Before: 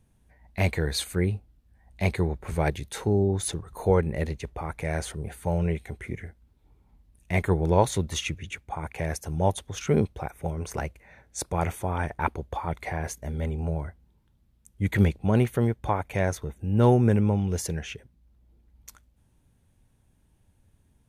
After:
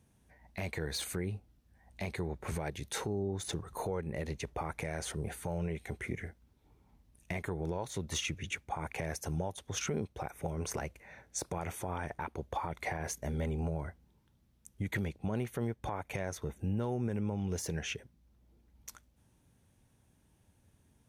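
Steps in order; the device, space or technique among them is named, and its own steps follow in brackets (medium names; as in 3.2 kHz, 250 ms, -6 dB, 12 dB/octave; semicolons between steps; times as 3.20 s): broadcast voice chain (high-pass 110 Hz 6 dB/octave; de-esser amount 65%; compression 5:1, threshold -30 dBFS, peak gain reduction 14.5 dB; peaking EQ 5.8 kHz +3.5 dB 0.34 oct; peak limiter -24.5 dBFS, peak gain reduction 8 dB)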